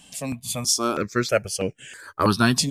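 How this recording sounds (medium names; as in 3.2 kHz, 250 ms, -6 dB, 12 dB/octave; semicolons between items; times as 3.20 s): notches that jump at a steady rate 3.1 Hz 370–4100 Hz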